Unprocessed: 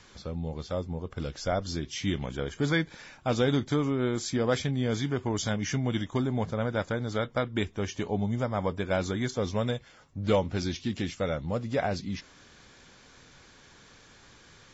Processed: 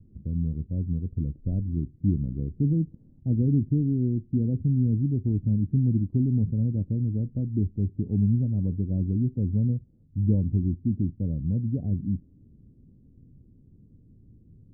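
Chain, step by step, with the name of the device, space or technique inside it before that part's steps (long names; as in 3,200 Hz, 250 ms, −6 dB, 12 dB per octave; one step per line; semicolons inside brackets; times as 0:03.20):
0:03.38–0:04.99: Bessel low-pass filter 760 Hz
the neighbour's flat through the wall (low-pass filter 270 Hz 24 dB per octave; parametric band 100 Hz +4 dB 0.74 octaves)
level +6 dB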